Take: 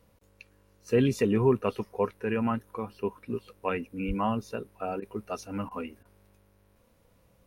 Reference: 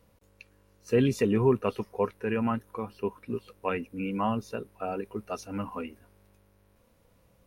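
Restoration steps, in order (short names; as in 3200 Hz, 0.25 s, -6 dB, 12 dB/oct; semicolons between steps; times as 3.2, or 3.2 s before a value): 4.07–4.19 HPF 140 Hz 24 dB/oct; interpolate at 5/5.69/6.03, 20 ms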